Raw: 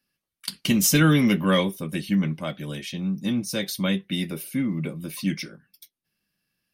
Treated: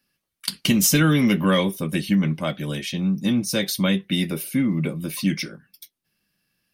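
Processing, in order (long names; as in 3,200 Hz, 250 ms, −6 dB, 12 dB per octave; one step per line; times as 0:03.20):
downward compressor 2.5 to 1, threshold −21 dBFS, peak gain reduction 5.5 dB
level +5 dB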